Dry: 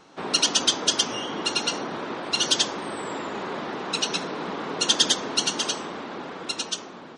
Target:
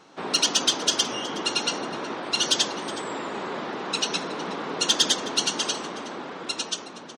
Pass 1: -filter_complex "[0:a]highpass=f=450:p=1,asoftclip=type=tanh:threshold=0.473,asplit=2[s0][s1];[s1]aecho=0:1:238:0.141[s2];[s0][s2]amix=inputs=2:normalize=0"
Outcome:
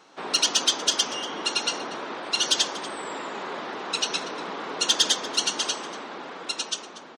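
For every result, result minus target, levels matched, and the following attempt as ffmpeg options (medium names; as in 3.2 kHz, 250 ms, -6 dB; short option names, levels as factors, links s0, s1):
125 Hz band -7.5 dB; echo 130 ms early
-filter_complex "[0:a]highpass=f=110:p=1,asoftclip=type=tanh:threshold=0.473,asplit=2[s0][s1];[s1]aecho=0:1:238:0.141[s2];[s0][s2]amix=inputs=2:normalize=0"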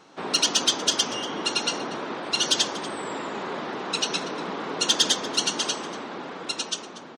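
echo 130 ms early
-filter_complex "[0:a]highpass=f=110:p=1,asoftclip=type=tanh:threshold=0.473,asplit=2[s0][s1];[s1]aecho=0:1:368:0.141[s2];[s0][s2]amix=inputs=2:normalize=0"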